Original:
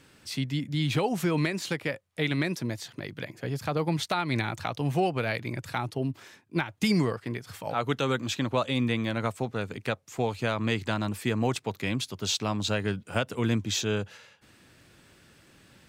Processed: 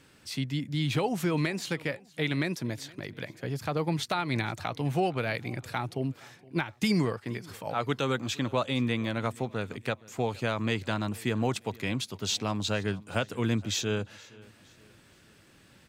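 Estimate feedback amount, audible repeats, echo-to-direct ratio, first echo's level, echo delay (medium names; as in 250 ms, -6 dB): 40%, 2, -22.5 dB, -23.0 dB, 468 ms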